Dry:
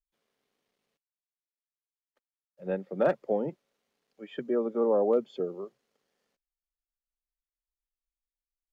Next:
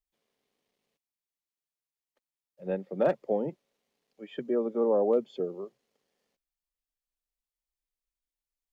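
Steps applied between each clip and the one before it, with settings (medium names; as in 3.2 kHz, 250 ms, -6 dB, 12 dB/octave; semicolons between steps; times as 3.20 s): peaking EQ 1.4 kHz -5 dB 0.58 oct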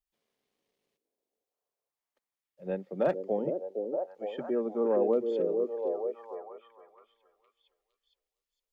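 repeats whose band climbs or falls 462 ms, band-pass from 380 Hz, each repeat 0.7 oct, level -2 dB; trim -2 dB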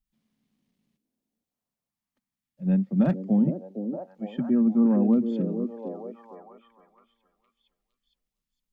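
resonant low shelf 310 Hz +12 dB, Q 3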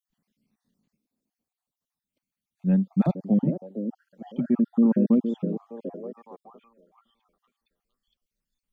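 random holes in the spectrogram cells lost 43%; trim +1.5 dB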